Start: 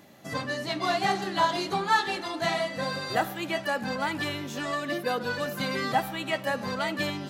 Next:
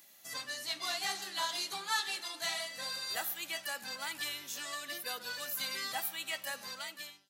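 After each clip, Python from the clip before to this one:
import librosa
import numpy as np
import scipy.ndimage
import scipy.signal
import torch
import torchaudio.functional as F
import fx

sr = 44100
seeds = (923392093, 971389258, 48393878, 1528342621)

y = fx.fade_out_tail(x, sr, length_s=0.71)
y = F.preemphasis(torch.from_numpy(y), 0.97).numpy()
y = y * librosa.db_to_amplitude(3.5)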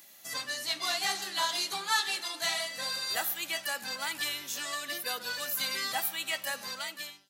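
y = scipy.signal.sosfilt(scipy.signal.butter(2, 73.0, 'highpass', fs=sr, output='sos'), x)
y = y * librosa.db_to_amplitude(5.0)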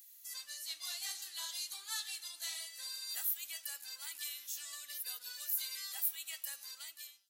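y = np.diff(x, prepend=0.0)
y = y * librosa.db_to_amplitude(-5.5)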